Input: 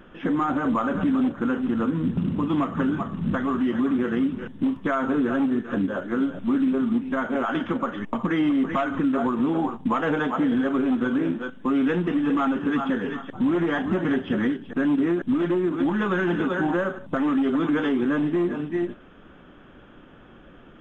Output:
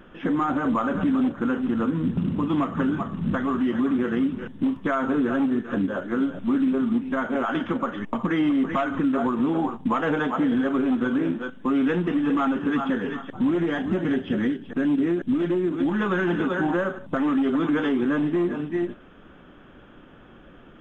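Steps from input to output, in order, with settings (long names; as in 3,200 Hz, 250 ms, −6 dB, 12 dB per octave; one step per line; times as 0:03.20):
0:13.50–0:15.92: dynamic equaliser 1,100 Hz, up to −6 dB, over −42 dBFS, Q 1.2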